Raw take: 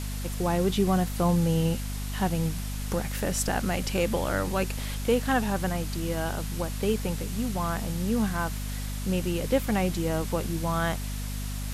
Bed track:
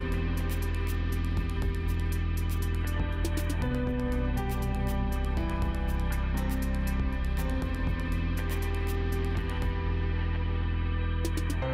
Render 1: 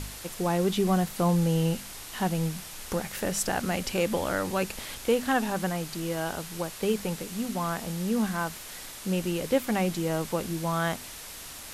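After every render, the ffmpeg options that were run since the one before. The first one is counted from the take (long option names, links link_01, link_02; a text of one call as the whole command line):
ffmpeg -i in.wav -af "bandreject=frequency=50:width_type=h:width=4,bandreject=frequency=100:width_type=h:width=4,bandreject=frequency=150:width_type=h:width=4,bandreject=frequency=200:width_type=h:width=4,bandreject=frequency=250:width_type=h:width=4" out.wav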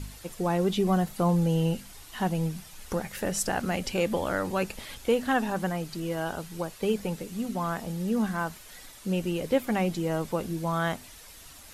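ffmpeg -i in.wav -af "afftdn=noise_reduction=9:noise_floor=-42" out.wav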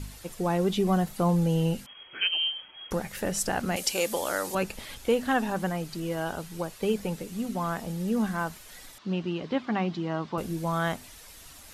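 ffmpeg -i in.wav -filter_complex "[0:a]asettb=1/sr,asplit=3[link_01][link_02][link_03];[link_01]atrim=end=1.864[link_04];[link_02]atrim=start=1.86:end=2.91,asetpts=PTS-STARTPTS,afade=type=in:duration=0.004:curve=qsin,afade=type=out:start_time=1.046:duration=0.004:curve=qsin,lowpass=frequency=2800:width_type=q:width=0.5098,lowpass=frequency=2800:width_type=q:width=0.6013,lowpass=frequency=2800:width_type=q:width=0.9,lowpass=frequency=2800:width_type=q:width=2.563,afreqshift=-3300[link_05];[link_03]atrim=start=2.906[link_06];[link_04][link_05]acrossfade=duration=0.004:curve1=hsin:curve2=qsin[link_07];[link_07][link_06]acrossfade=duration=0.004:curve1=qsin:curve2=hsin,asettb=1/sr,asplit=3[link_08][link_09][link_10];[link_08]atrim=end=3.764[link_11];[link_09]atrim=start=3.76:end=4.55,asetpts=PTS-STARTPTS,afade=type=in:duration=0.004:curve=qsin,afade=type=out:start_time=0.786:duration=0.004:curve=qsin,bass=frequency=250:gain=-14,treble=frequency=4000:gain=12[link_12];[link_10]atrim=start=4.546[link_13];[link_11][link_12]acrossfade=duration=0.004:curve1=hsin:curve2=qsin[link_14];[link_14][link_13]acrossfade=duration=0.004:curve1=qsin:curve2=hsin,asettb=1/sr,asplit=3[link_15][link_16][link_17];[link_15]atrim=end=8.984[link_18];[link_16]atrim=start=8.98:end=10.38,asetpts=PTS-STARTPTS,afade=type=in:duration=0.004:curve=qsin,afade=type=out:start_time=1.396:duration=0.004:curve=qsin,highpass=140,equalizer=frequency=510:width_type=q:width=4:gain=-9,equalizer=frequency=1100:width_type=q:width=4:gain=5,equalizer=frequency=2300:width_type=q:width=4:gain=-4,lowpass=frequency=4600:width=0.5412,lowpass=frequency=4600:width=1.3066[link_19];[link_17]atrim=start=10.376[link_20];[link_18][link_19]acrossfade=duration=0.004:curve1=hsin:curve2=qsin[link_21];[link_21][link_20]acrossfade=duration=0.004:curve1=qsin:curve2=hsin" out.wav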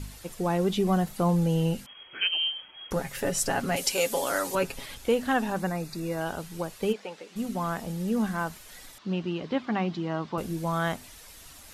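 ffmpeg -i in.wav -filter_complex "[0:a]asettb=1/sr,asplit=3[link_01][link_02][link_03];[link_01]atrim=end=2.954[link_04];[link_02]atrim=start=2.95:end=4.86,asetpts=PTS-STARTPTS,afade=type=in:duration=0.004:curve=qsin,afade=type=out:start_time=1.906:duration=0.004:curve=qsin,aecho=1:1:7.3:0.65,atrim=end_sample=84231[link_05];[link_03]atrim=start=4.856[link_06];[link_04][link_05]acrossfade=duration=0.004:curve1=hsin:curve2=qsin[link_07];[link_07][link_06]acrossfade=duration=0.004:curve1=qsin:curve2=hsin,asettb=1/sr,asplit=3[link_08][link_09][link_10];[link_08]atrim=end=5.604[link_11];[link_09]atrim=start=5.6:end=6.21,asetpts=PTS-STARTPTS,afade=type=in:duration=0.004:curve=qsin,afade=type=out:start_time=0.606:duration=0.004:curve=qsin,asuperstop=centerf=3100:order=20:qfactor=6.2[link_12];[link_10]atrim=start=6.206[link_13];[link_11][link_12]acrossfade=duration=0.004:curve1=hsin:curve2=qsin[link_14];[link_14][link_13]acrossfade=duration=0.004:curve1=qsin:curve2=hsin,asplit=3[link_15][link_16][link_17];[link_15]afade=type=out:start_time=6.92:duration=0.02[link_18];[link_16]highpass=530,lowpass=4600,afade=type=in:start_time=6.92:duration=0.02,afade=type=out:start_time=7.35:duration=0.02[link_19];[link_17]afade=type=in:start_time=7.35:duration=0.02[link_20];[link_18][link_19][link_20]amix=inputs=3:normalize=0" out.wav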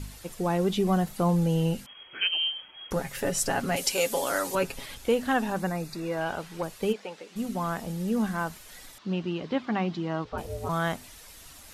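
ffmpeg -i in.wav -filter_complex "[0:a]asettb=1/sr,asplit=3[link_01][link_02][link_03];[link_01]atrim=end=5.954[link_04];[link_02]atrim=start=5.95:end=6.63,asetpts=PTS-STARTPTS,afade=type=in:duration=0.004:curve=qsin,afade=type=out:start_time=0.676:duration=0.004:curve=qsin,asplit=2[link_05][link_06];[link_06]highpass=frequency=720:poles=1,volume=11dB,asoftclip=type=tanh:threshold=-18.5dB[link_07];[link_05][link_07]amix=inputs=2:normalize=0,lowpass=frequency=2200:poles=1,volume=-6dB[link_08];[link_03]atrim=start=6.626[link_09];[link_04][link_08]acrossfade=duration=0.004:curve1=hsin:curve2=qsin[link_10];[link_10][link_09]acrossfade=duration=0.004:curve1=qsin:curve2=hsin,asplit=3[link_11][link_12][link_13];[link_11]afade=type=out:start_time=10.24:duration=0.02[link_14];[link_12]aeval=exprs='val(0)*sin(2*PI*270*n/s)':channel_layout=same,afade=type=in:start_time=10.24:duration=0.02,afade=type=out:start_time=10.68:duration=0.02[link_15];[link_13]afade=type=in:start_time=10.68:duration=0.02[link_16];[link_14][link_15][link_16]amix=inputs=3:normalize=0" out.wav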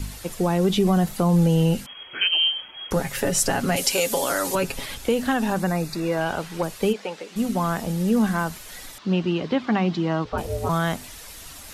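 ffmpeg -i in.wav -filter_complex "[0:a]asplit=2[link_01][link_02];[link_02]alimiter=limit=-19dB:level=0:latency=1,volume=3dB[link_03];[link_01][link_03]amix=inputs=2:normalize=0,acrossover=split=290|3000[link_04][link_05][link_06];[link_05]acompressor=threshold=-21dB:ratio=6[link_07];[link_04][link_07][link_06]amix=inputs=3:normalize=0" out.wav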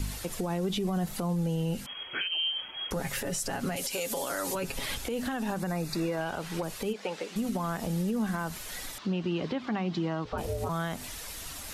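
ffmpeg -i in.wav -af "acompressor=threshold=-25dB:ratio=6,alimiter=limit=-22.5dB:level=0:latency=1:release=86" out.wav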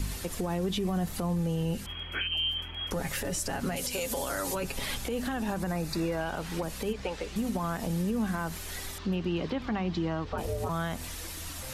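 ffmpeg -i in.wav -i bed.wav -filter_complex "[1:a]volume=-15.5dB[link_01];[0:a][link_01]amix=inputs=2:normalize=0" out.wav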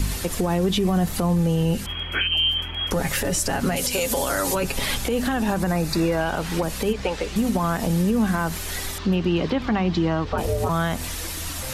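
ffmpeg -i in.wav -af "volume=9dB" out.wav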